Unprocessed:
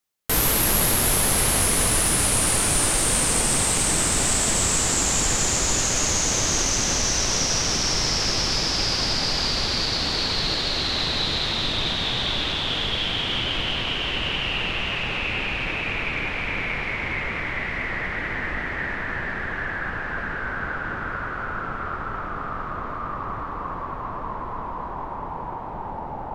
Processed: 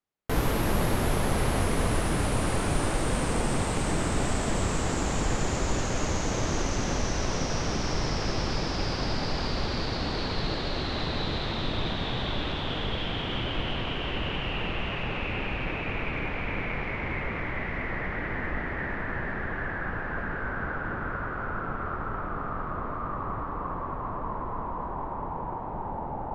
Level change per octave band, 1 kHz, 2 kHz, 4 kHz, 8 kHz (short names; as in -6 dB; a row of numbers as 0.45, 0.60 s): -3.0, -6.5, -11.5, -17.0 dB